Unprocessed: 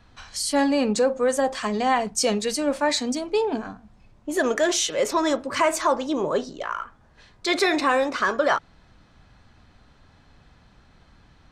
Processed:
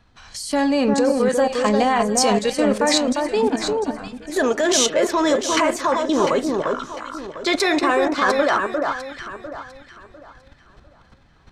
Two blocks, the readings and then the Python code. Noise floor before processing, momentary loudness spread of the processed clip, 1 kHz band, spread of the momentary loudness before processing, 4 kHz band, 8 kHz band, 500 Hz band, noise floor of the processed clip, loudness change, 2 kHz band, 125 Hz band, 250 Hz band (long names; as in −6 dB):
−56 dBFS, 14 LU, +4.0 dB, 10 LU, +4.0 dB, +4.0 dB, +4.5 dB, −53 dBFS, +4.0 dB, +3.0 dB, +6.5 dB, +5.5 dB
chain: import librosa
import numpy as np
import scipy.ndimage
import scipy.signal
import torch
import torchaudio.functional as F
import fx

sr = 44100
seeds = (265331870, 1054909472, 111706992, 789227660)

y = fx.level_steps(x, sr, step_db=13)
y = fx.echo_alternate(y, sr, ms=350, hz=1600.0, feedback_pct=54, wet_db=-3)
y = F.gain(torch.from_numpy(y), 8.0).numpy()